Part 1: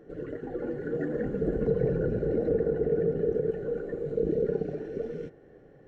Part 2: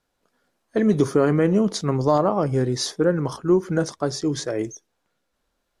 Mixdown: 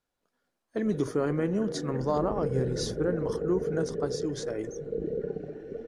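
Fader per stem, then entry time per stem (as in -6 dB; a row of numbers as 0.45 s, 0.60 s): -5.0 dB, -9.5 dB; 0.75 s, 0.00 s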